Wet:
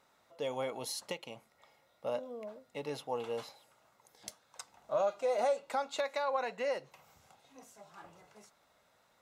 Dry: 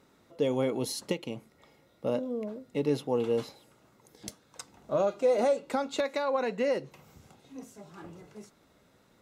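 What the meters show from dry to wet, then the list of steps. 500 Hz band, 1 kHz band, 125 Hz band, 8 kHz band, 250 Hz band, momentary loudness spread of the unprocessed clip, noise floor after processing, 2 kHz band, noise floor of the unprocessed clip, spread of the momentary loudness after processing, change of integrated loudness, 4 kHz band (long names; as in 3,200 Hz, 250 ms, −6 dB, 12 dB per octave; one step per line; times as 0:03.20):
−6.5 dB, −1.5 dB, −14.0 dB, −3.5 dB, −15.5 dB, 21 LU, −71 dBFS, −3.0 dB, −64 dBFS, 20 LU, −6.0 dB, −3.5 dB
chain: low shelf with overshoot 490 Hz −10 dB, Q 1.5
level −3.5 dB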